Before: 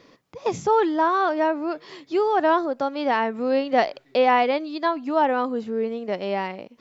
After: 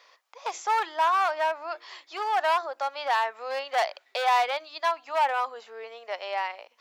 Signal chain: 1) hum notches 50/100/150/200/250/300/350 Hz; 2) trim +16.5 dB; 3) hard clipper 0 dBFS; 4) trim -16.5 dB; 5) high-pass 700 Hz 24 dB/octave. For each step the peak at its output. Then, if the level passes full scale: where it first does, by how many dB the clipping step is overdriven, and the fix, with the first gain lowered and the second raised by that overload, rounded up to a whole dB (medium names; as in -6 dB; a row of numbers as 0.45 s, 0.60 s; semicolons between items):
-7.5 dBFS, +9.0 dBFS, 0.0 dBFS, -16.5 dBFS, -14.5 dBFS; step 2, 9.0 dB; step 2 +7.5 dB, step 4 -7.5 dB